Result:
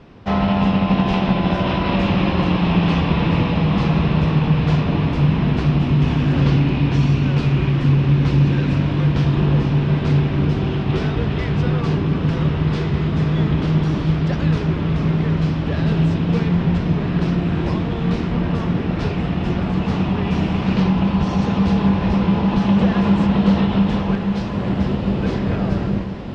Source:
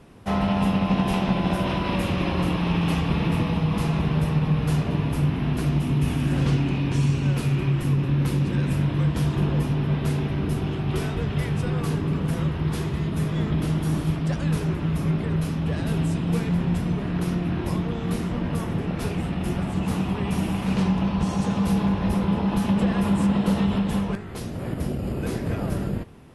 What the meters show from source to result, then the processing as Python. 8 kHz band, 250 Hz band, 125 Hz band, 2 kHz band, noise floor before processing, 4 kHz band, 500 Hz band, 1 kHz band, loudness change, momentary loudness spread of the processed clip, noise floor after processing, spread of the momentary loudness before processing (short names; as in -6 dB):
n/a, +6.0 dB, +6.0 dB, +6.0 dB, -30 dBFS, +5.5 dB, +6.0 dB, +6.0 dB, +6.0 dB, 5 LU, -23 dBFS, 5 LU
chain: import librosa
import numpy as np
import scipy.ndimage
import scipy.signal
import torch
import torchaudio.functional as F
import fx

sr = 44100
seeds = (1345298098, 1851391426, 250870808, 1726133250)

p1 = scipy.signal.sosfilt(scipy.signal.butter(4, 5100.0, 'lowpass', fs=sr, output='sos'), x)
p2 = p1 + fx.echo_diffused(p1, sr, ms=1494, feedback_pct=41, wet_db=-7, dry=0)
y = p2 * 10.0 ** (5.0 / 20.0)